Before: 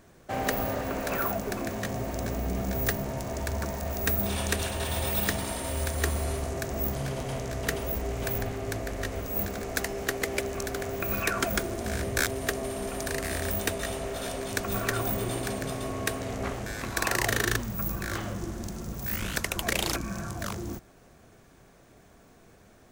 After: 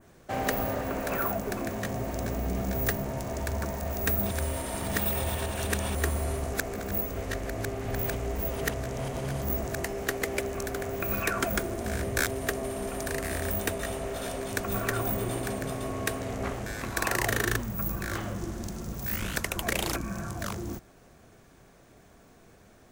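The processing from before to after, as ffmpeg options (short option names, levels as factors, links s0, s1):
-filter_complex "[0:a]asplit=5[s0][s1][s2][s3][s4];[s0]atrim=end=4.312[s5];[s1]atrim=start=4.308:end=5.952,asetpts=PTS-STARTPTS,areverse[s6];[s2]atrim=start=5.948:end=6.532[s7];[s3]atrim=start=6.528:end=9.842,asetpts=PTS-STARTPTS,areverse[s8];[s4]atrim=start=9.838[s9];[s5][s6]acrossfade=d=0.004:c1=hsin:c2=hsin[s10];[s10][s7]acrossfade=d=0.004:c1=hsin:c2=hsin[s11];[s11][s8]acrossfade=d=0.004:c1=hsin:c2=hsin[s12];[s12][s9]acrossfade=d=0.004:c1=hsin:c2=hsin,adynamicequalizer=threshold=0.00447:dfrequency=4500:dqfactor=0.84:tfrequency=4500:tqfactor=0.84:attack=5:release=100:ratio=0.375:range=2.5:mode=cutabove:tftype=bell"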